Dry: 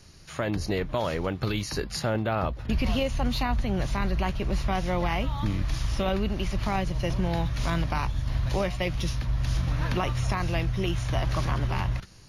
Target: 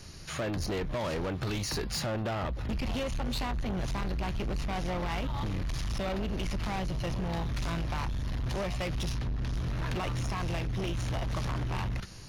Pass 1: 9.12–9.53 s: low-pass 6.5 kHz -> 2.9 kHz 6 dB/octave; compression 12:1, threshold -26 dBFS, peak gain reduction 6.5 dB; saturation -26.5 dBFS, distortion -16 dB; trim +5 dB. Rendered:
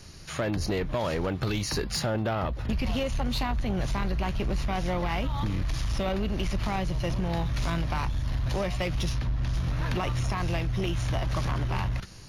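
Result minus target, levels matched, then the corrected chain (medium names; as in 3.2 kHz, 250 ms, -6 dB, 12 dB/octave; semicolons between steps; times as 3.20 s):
saturation: distortion -7 dB
9.12–9.53 s: low-pass 6.5 kHz -> 2.9 kHz 6 dB/octave; compression 12:1, threshold -26 dBFS, peak gain reduction 6.5 dB; saturation -34 dBFS, distortion -9 dB; trim +5 dB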